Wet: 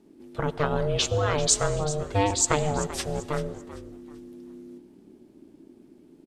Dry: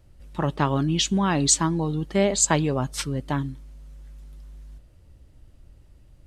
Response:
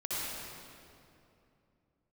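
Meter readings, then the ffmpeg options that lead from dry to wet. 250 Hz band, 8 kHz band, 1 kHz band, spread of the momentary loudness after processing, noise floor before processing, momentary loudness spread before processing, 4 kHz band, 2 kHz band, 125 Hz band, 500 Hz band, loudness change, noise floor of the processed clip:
-8.0 dB, -2.5 dB, -1.0 dB, 22 LU, -54 dBFS, 10 LU, -2.0 dB, -1.5 dB, -3.5 dB, +1.0 dB, -2.5 dB, -55 dBFS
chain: -filter_complex "[0:a]aeval=exprs='val(0)*sin(2*PI*300*n/s)':c=same,asplit=4[a][b][c][d];[b]adelay=388,afreqshift=-65,volume=-14.5dB[e];[c]adelay=776,afreqshift=-130,volume=-24.4dB[f];[d]adelay=1164,afreqshift=-195,volume=-34.3dB[g];[a][e][f][g]amix=inputs=4:normalize=0,asplit=2[h][i];[1:a]atrim=start_sample=2205,afade=t=out:st=0.29:d=0.01,atrim=end_sample=13230,asetrate=34839,aresample=44100[j];[i][j]afir=irnorm=-1:irlink=0,volume=-22dB[k];[h][k]amix=inputs=2:normalize=0"

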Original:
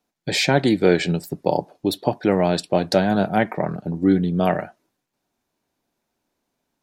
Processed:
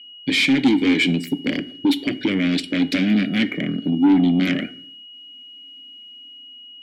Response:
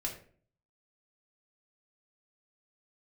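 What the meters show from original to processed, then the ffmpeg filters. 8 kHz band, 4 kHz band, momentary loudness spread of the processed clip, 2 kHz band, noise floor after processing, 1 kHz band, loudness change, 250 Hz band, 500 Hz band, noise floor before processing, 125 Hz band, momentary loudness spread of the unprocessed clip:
n/a, +4.5 dB, 23 LU, +4.0 dB, -42 dBFS, -10.0 dB, +1.5 dB, +4.5 dB, -9.5 dB, -78 dBFS, -3.0 dB, 7 LU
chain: -filter_complex "[0:a]aemphasis=mode=production:type=50fm,dynaudnorm=f=320:g=7:m=10dB,aeval=exprs='0.944*sin(PI/2*3.98*val(0)/0.944)':c=same,aeval=exprs='val(0)+0.0316*sin(2*PI*2900*n/s)':c=same,asplit=3[a][b][c];[a]bandpass=f=270:t=q:w=8,volume=0dB[d];[b]bandpass=f=2.29k:t=q:w=8,volume=-6dB[e];[c]bandpass=f=3.01k:t=q:w=8,volume=-9dB[f];[d][e][f]amix=inputs=3:normalize=0,asoftclip=type=tanh:threshold=-11.5dB,asplit=2[g][h];[1:a]atrim=start_sample=2205,afade=t=out:st=0.32:d=0.01,atrim=end_sample=14553,asetrate=30870,aresample=44100[i];[h][i]afir=irnorm=-1:irlink=0,volume=-15dB[j];[g][j]amix=inputs=2:normalize=0"

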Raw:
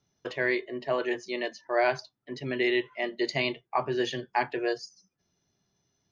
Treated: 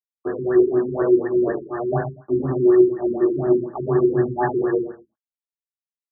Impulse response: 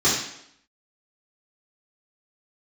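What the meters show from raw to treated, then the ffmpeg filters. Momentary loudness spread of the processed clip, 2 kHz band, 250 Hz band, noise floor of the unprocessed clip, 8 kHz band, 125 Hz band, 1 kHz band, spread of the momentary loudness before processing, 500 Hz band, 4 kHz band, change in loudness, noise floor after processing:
9 LU, -6.0 dB, +14.0 dB, -81 dBFS, n/a, +14.5 dB, +3.0 dB, 10 LU, +11.5 dB, under -40 dB, +10.0 dB, under -85 dBFS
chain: -filter_complex "[0:a]areverse,acompressor=threshold=-35dB:ratio=10,areverse,aeval=exprs='val(0)*gte(abs(val(0)),0.00944)':c=same,asplit=2[a][b];[b]adelay=116.6,volume=-13dB,highshelf=f=4k:g=-2.62[c];[a][c]amix=inputs=2:normalize=0[d];[1:a]atrim=start_sample=2205,afade=t=out:st=0.23:d=0.01,atrim=end_sample=10584[e];[d][e]afir=irnorm=-1:irlink=0,afftfilt=real='re*lt(b*sr/1024,410*pow(1900/410,0.5+0.5*sin(2*PI*4.1*pts/sr)))':imag='im*lt(b*sr/1024,410*pow(1900/410,0.5+0.5*sin(2*PI*4.1*pts/sr)))':win_size=1024:overlap=0.75"

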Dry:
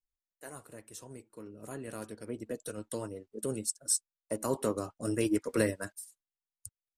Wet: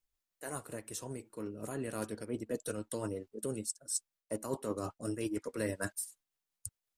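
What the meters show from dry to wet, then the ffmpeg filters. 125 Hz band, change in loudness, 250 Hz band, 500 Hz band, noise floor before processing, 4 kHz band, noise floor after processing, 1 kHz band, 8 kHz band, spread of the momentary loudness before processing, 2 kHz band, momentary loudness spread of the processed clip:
-2.0 dB, -5.0 dB, -4.0 dB, -3.5 dB, under -85 dBFS, -4.0 dB, under -85 dBFS, -2.0 dB, -4.0 dB, 19 LU, -2.5 dB, 7 LU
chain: -af "areverse,acompressor=threshold=-39dB:ratio=6,areverse,tremolo=f=5.5:d=0.31,volume=7dB"

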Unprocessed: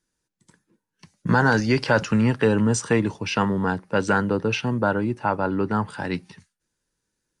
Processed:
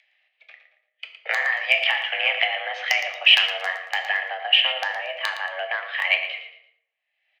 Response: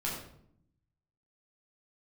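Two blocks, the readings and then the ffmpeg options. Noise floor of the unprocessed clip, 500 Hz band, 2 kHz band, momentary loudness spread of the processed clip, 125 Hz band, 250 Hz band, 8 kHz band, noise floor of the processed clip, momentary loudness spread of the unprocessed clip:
-81 dBFS, -10.0 dB, +6.0 dB, 12 LU, under -40 dB, under -40 dB, -9.0 dB, -77 dBFS, 7 LU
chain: -filter_complex "[0:a]agate=range=-33dB:threshold=-50dB:ratio=3:detection=peak,highpass=f=340:t=q:w=0.5412,highpass=f=340:t=q:w=1.307,lowpass=f=2.5k:t=q:w=0.5176,lowpass=f=2.5k:t=q:w=0.7071,lowpass=f=2.5k:t=q:w=1.932,afreqshift=280,acompressor=threshold=-30dB:ratio=20,asoftclip=type=hard:threshold=-20.5dB,acompressor=mode=upward:threshold=-53dB:ratio=2.5,aecho=1:1:114|228|342:0.282|0.0874|0.0271,asplit=2[a][b];[1:a]atrim=start_sample=2205,asetrate=43659,aresample=44100,lowpass=6.6k[c];[b][c]afir=irnorm=-1:irlink=0,volume=-6.5dB[d];[a][d]amix=inputs=2:normalize=0,aexciter=amount=14.4:drive=4.5:freq=2k,volume=-1dB"

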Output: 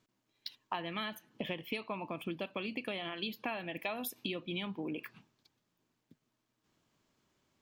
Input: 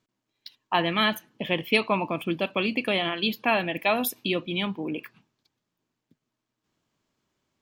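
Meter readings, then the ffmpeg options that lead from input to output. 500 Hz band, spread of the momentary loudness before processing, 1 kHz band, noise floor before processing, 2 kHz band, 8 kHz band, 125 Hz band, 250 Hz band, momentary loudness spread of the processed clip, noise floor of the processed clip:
-13.5 dB, 6 LU, -14.0 dB, -84 dBFS, -14.0 dB, -11.5 dB, -11.5 dB, -12.0 dB, 6 LU, -82 dBFS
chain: -af "acompressor=threshold=-36dB:ratio=10,volume=1dB"

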